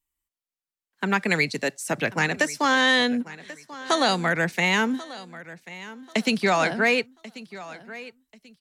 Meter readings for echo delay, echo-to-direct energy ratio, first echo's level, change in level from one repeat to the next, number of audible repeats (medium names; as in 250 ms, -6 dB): 1088 ms, -17.0 dB, -17.5 dB, -10.5 dB, 2